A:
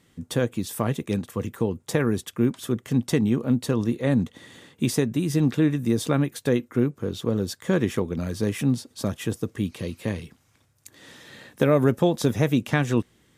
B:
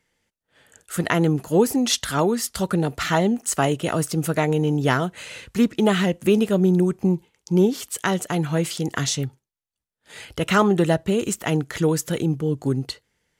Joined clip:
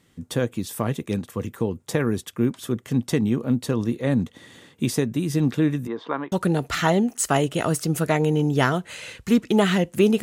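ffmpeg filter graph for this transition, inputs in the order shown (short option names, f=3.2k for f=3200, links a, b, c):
-filter_complex "[0:a]asplit=3[a][b][c];[a]afade=t=out:st=5.86:d=0.02[d];[b]highpass=430,equalizer=f=560:t=q:w=4:g=-4,equalizer=f=1k:t=q:w=4:g=10,equalizer=f=2.5k:t=q:w=4:g=-9,lowpass=f=3k:w=0.5412,lowpass=f=3k:w=1.3066,afade=t=in:st=5.86:d=0.02,afade=t=out:st=6.32:d=0.02[e];[c]afade=t=in:st=6.32:d=0.02[f];[d][e][f]amix=inputs=3:normalize=0,apad=whole_dur=10.22,atrim=end=10.22,atrim=end=6.322[g];[1:a]atrim=start=2.598:end=6.5[h];[g][h]acrossfade=d=0.004:c1=hsin:c2=hsin"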